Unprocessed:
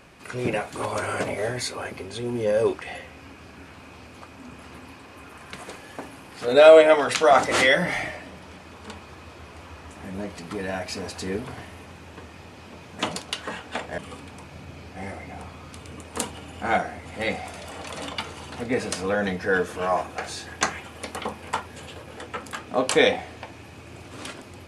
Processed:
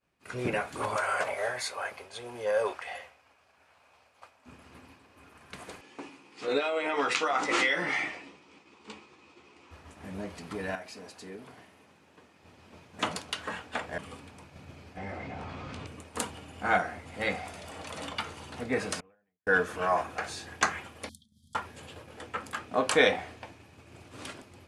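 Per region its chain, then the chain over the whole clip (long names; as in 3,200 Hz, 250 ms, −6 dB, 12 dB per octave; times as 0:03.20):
0:00.96–0:04.46: low shelf with overshoot 430 Hz −12 dB, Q 1.5 + floating-point word with a short mantissa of 8 bits
0:05.81–0:09.71: downward compressor 10 to 1, threshold −18 dBFS + loudspeaker in its box 220–8,200 Hz, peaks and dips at 330 Hz +5 dB, 630 Hz −9 dB, 1,600 Hz −6 dB, 2,500 Hz +4 dB + double-tracking delay 14 ms −7 dB
0:10.75–0:12.43: high-pass filter 160 Hz + downward compressor 2 to 1, threshold −41 dBFS
0:14.97–0:15.87: high-frequency loss of the air 110 metres + double-tracking delay 19 ms −9 dB + envelope flattener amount 70%
0:19.00–0:19.47: Chebyshev low-pass filter 2,800 Hz, order 4 + gate with flip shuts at −32 dBFS, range −26 dB
0:21.09–0:21.55: downward compressor 16 to 1, threshold −36 dBFS + linear-phase brick-wall band-stop 260–3,100 Hz
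whole clip: downward expander −38 dBFS; dynamic equaliser 1,400 Hz, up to +6 dB, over −38 dBFS, Q 1.2; level −5.5 dB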